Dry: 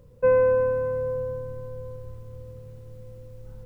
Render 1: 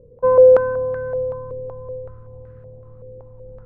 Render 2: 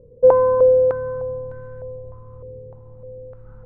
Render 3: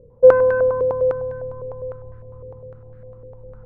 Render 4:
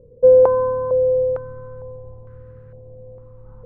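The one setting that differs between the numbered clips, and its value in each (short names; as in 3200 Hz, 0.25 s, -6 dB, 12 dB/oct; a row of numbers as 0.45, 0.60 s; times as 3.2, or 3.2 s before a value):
stepped low-pass, rate: 5.3, 3.3, 9.9, 2.2 Hz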